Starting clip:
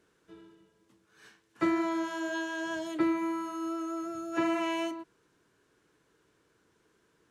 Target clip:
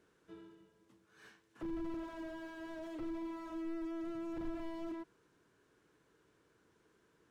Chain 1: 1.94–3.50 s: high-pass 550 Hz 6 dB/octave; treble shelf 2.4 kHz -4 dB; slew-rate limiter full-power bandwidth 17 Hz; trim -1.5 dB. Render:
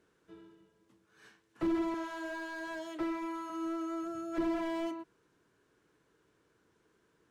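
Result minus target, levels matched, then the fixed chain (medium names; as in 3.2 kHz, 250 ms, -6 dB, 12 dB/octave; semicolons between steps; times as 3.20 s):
slew-rate limiter: distortion -12 dB
1.94–3.50 s: high-pass 550 Hz 6 dB/octave; treble shelf 2.4 kHz -4 dB; slew-rate limiter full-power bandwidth 4.5 Hz; trim -1.5 dB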